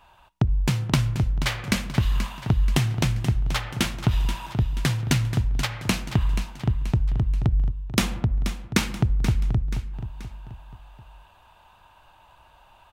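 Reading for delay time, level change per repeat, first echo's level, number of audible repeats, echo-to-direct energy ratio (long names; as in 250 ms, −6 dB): 481 ms, −7.0 dB, −10.5 dB, 3, −9.5 dB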